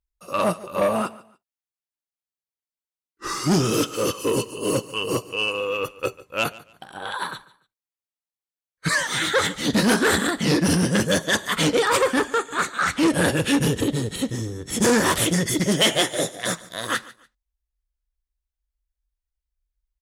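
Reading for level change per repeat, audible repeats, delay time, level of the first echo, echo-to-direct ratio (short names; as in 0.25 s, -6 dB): -11.5 dB, 2, 0.145 s, -20.0 dB, -19.5 dB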